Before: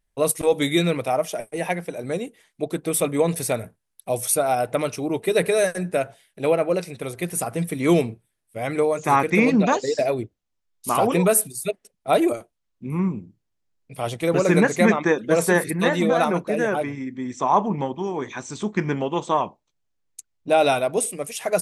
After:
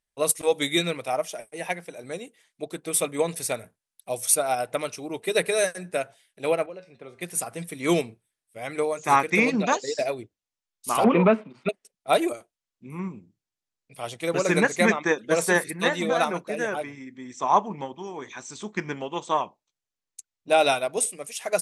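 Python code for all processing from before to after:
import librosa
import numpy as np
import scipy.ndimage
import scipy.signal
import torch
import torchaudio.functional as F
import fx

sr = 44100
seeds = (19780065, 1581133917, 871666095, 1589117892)

y = fx.chain(x, sr, fx.spacing_loss(db_at_10k=24),
    fx.comb_fb(f0_hz=79.0, decay_s=0.26, harmonics='odd', damping=0.0, mix_pct=70),
    fx.band_squash(depth_pct=100), at=(6.66, 7.21))
y = fx.chain(y, sr, fx.leveller(passes=2),
    fx.cabinet(low_hz=200.0, low_slope=12, high_hz=2200.0, hz=(220.0, 430.0, 720.0, 1700.0), db=(10, -4, -6, -10)),
    fx.band_squash(depth_pct=40), at=(11.04, 11.69))
y = scipy.signal.sosfilt(scipy.signal.butter(2, 9200.0, 'lowpass', fs=sr, output='sos'), y)
y = fx.tilt_eq(y, sr, slope=2.0)
y = fx.upward_expand(y, sr, threshold_db=-28.0, expansion=1.5)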